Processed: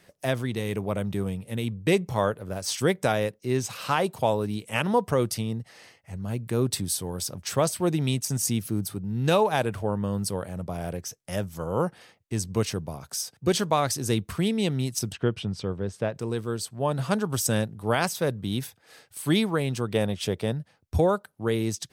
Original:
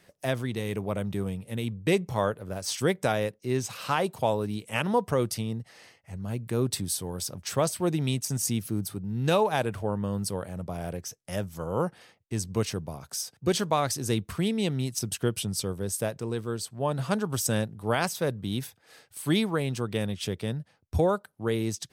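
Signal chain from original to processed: 15.12–16.15 LPF 2900 Hz 12 dB/oct; 19.92–20.52 dynamic EQ 680 Hz, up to +7 dB, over -45 dBFS, Q 1; gain +2 dB

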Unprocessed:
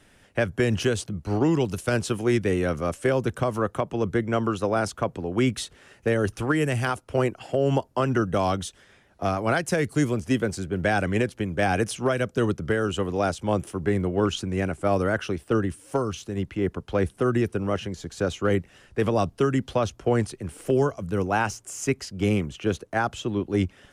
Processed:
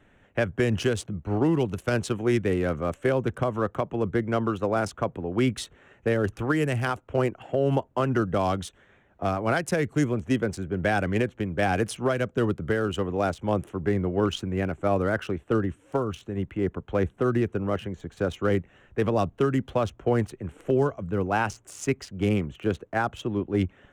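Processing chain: Wiener smoothing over 9 samples; gain -1 dB

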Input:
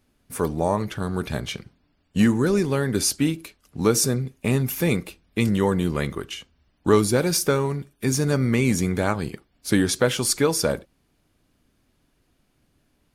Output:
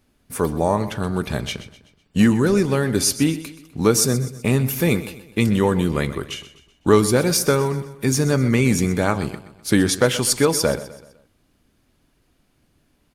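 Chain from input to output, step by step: feedback echo 0.126 s, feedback 44%, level -15 dB; gain +3 dB

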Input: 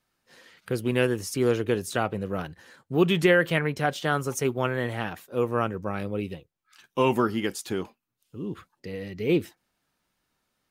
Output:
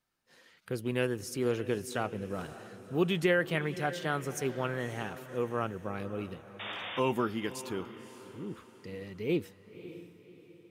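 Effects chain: painted sound noise, 6.59–7, 490–3700 Hz -33 dBFS; diffused feedback echo 0.563 s, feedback 43%, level -14 dB; gain -7 dB

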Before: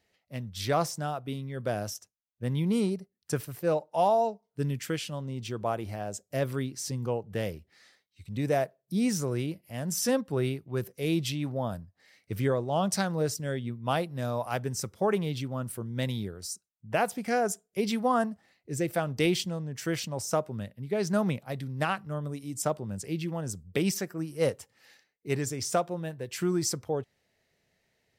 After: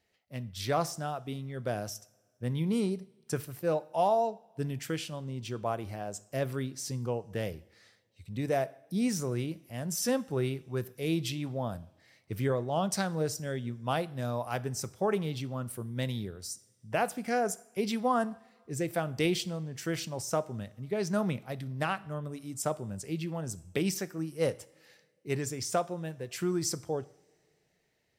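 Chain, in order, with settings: two-slope reverb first 0.56 s, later 2.6 s, from -20 dB, DRR 16 dB; gain -2.5 dB

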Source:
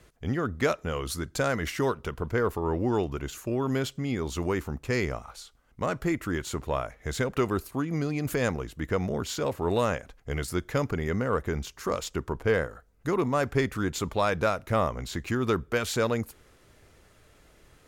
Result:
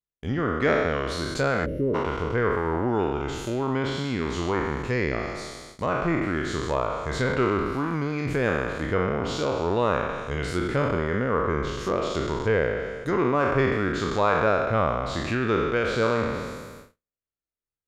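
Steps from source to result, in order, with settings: spectral trails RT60 1.70 s; gate -44 dBFS, range -46 dB; treble ducked by the level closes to 3000 Hz, closed at -21 dBFS; spectral gain 1.66–1.95, 630–9800 Hz -27 dB

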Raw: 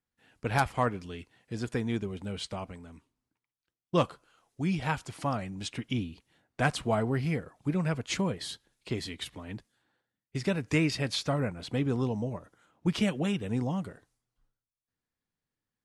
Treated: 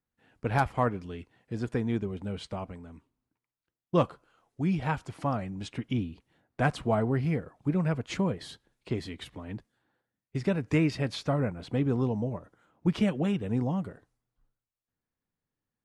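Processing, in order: high shelf 2400 Hz -11 dB; gain +2 dB

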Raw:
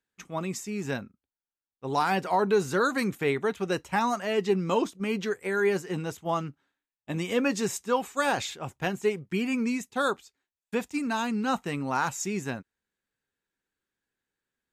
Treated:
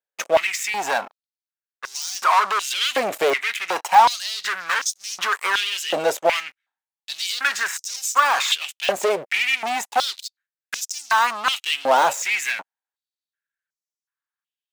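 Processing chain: de-esser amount 95%; sample leveller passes 5; compressor, threshold -18 dBFS, peak gain reduction 3 dB; stepped high-pass 2.7 Hz 590–5700 Hz

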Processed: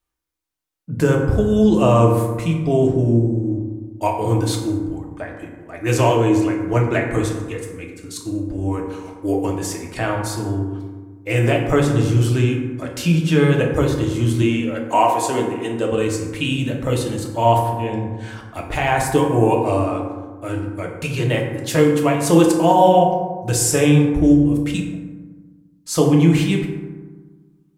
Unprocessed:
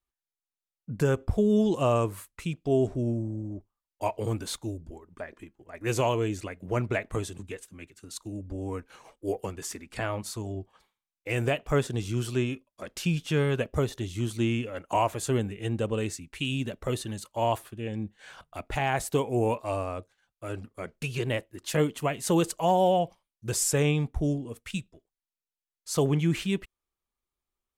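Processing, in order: 14.42–15.92 HPF 270 Hz 12 dB/oct; reverb RT60 1.4 s, pre-delay 3 ms, DRR -0.5 dB; gain +6.5 dB

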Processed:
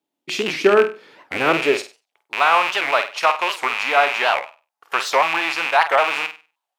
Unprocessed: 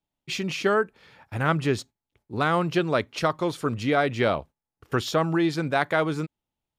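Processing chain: rattling part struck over -35 dBFS, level -16 dBFS; flutter echo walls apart 8.4 m, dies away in 0.32 s; high-pass sweep 310 Hz -> 850 Hz, 1.32–2.2; record warp 78 rpm, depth 250 cents; gain +4 dB

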